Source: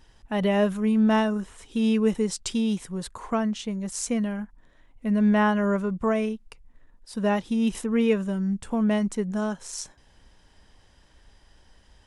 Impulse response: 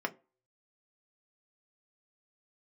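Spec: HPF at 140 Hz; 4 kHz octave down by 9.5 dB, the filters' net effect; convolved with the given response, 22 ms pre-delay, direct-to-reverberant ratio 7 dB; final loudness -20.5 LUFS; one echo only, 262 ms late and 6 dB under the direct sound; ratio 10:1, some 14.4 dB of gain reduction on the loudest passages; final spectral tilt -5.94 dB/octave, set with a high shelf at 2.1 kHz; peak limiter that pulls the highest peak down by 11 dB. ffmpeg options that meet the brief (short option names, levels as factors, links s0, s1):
-filter_complex "[0:a]highpass=140,highshelf=f=2100:g=-6.5,equalizer=f=4000:t=o:g=-7.5,acompressor=threshold=0.0224:ratio=10,alimiter=level_in=2.82:limit=0.0631:level=0:latency=1,volume=0.355,aecho=1:1:262:0.501,asplit=2[s0][s1];[1:a]atrim=start_sample=2205,adelay=22[s2];[s1][s2]afir=irnorm=-1:irlink=0,volume=0.237[s3];[s0][s3]amix=inputs=2:normalize=0,volume=8.91"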